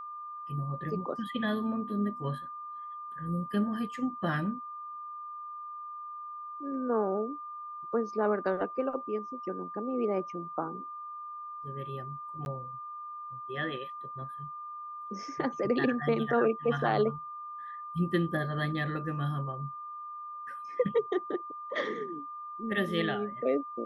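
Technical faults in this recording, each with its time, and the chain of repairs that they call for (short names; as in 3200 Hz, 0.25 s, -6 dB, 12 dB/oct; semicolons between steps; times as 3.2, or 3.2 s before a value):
tone 1200 Hz -39 dBFS
12.45–12.46 gap 11 ms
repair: notch 1200 Hz, Q 30; interpolate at 12.45, 11 ms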